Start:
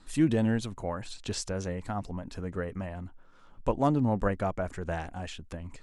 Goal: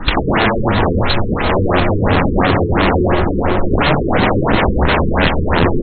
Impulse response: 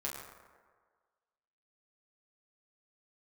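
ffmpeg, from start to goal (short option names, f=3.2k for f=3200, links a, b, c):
-filter_complex "[0:a]bandreject=f=50:t=h:w=6,bandreject=f=100:t=h:w=6,bandreject=f=150:t=h:w=6,bandreject=f=200:t=h:w=6,bandreject=f=250:t=h:w=6,bandreject=f=300:t=h:w=6,bandreject=f=350:t=h:w=6,asettb=1/sr,asplit=3[a][b][c];[a]atrim=end=4.454[d];[b]atrim=start=4.45:end=5.25,asetpts=PTS-STARTPTS,afade=t=in:d=0.004:c=qsin,afade=t=out:st=0.796:d=0.004:c=qsin,aecho=1:1:5.8:0.52,atrim=end_sample=35280[e];[c]atrim=start=5.246[f];[d][e]acrossfade=d=0.004:c1=hsin:c2=qsin[g];[g][f]acrossfade=d=0.004:c1=qsin:c2=hsin,acrossover=split=150[h][i];[i]acompressor=threshold=-41dB:ratio=3[j];[h][j]amix=inputs=2:normalize=0,aeval=exprs='(mod(63.1*val(0)+1,2)-1)/63.1':c=same,asplit=2[k][l];[l]adelay=505,lowpass=f=1.7k:p=1,volume=-7.5dB,asplit=2[m][n];[n]adelay=505,lowpass=f=1.7k:p=1,volume=0.52,asplit=2[o][p];[p]adelay=505,lowpass=f=1.7k:p=1,volume=0.52,asplit=2[q][r];[r]adelay=505,lowpass=f=1.7k:p=1,volume=0.52,asplit=2[s][t];[t]adelay=505,lowpass=f=1.7k:p=1,volume=0.52,asplit=2[u][v];[v]adelay=505,lowpass=f=1.7k:p=1,volume=0.52[w];[k][m][o][q][s][u][w]amix=inputs=7:normalize=0,asplit=2[x][y];[1:a]atrim=start_sample=2205,atrim=end_sample=3528,adelay=119[z];[y][z]afir=irnorm=-1:irlink=0,volume=-5dB[aa];[x][aa]amix=inputs=2:normalize=0,alimiter=level_in=36dB:limit=-1dB:release=50:level=0:latency=1,afftfilt=real='re*lt(b*sr/1024,470*pow(4400/470,0.5+0.5*sin(2*PI*2.9*pts/sr)))':imag='im*lt(b*sr/1024,470*pow(4400/470,0.5+0.5*sin(2*PI*2.9*pts/sr)))':win_size=1024:overlap=0.75,volume=-3dB"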